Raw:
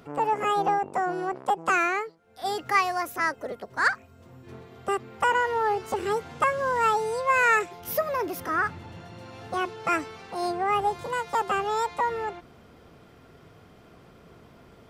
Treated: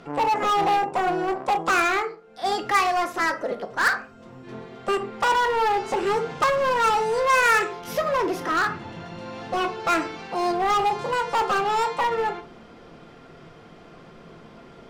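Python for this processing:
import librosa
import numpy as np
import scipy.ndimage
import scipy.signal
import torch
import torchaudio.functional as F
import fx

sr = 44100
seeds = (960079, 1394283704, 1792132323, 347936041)

p1 = scipy.signal.sosfilt(scipy.signal.butter(2, 6600.0, 'lowpass', fs=sr, output='sos'), x)
p2 = fx.peak_eq(p1, sr, hz=80.0, db=-10.5, octaves=1.2)
p3 = fx.room_shoebox(p2, sr, seeds[0], volume_m3=240.0, walls='furnished', distance_m=0.83)
p4 = 10.0 ** (-25.5 / 20.0) * (np.abs((p3 / 10.0 ** (-25.5 / 20.0) + 3.0) % 4.0 - 2.0) - 1.0)
p5 = p3 + (p4 * librosa.db_to_amplitude(-3.0))
y = p5 * librosa.db_to_amplitude(1.0)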